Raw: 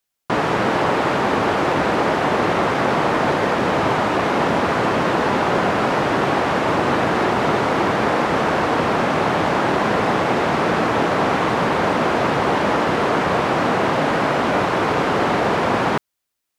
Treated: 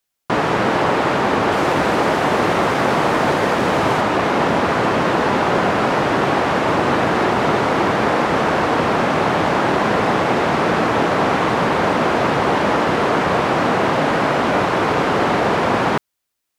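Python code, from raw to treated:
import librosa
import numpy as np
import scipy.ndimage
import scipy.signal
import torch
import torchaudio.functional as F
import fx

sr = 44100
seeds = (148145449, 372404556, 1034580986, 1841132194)

y = fx.high_shelf(x, sr, hz=8000.0, db=7.5, at=(1.52, 4.01))
y = y * librosa.db_to_amplitude(1.5)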